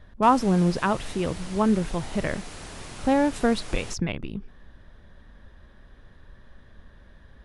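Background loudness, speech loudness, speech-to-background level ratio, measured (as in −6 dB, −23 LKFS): −40.5 LKFS, −25.0 LKFS, 15.5 dB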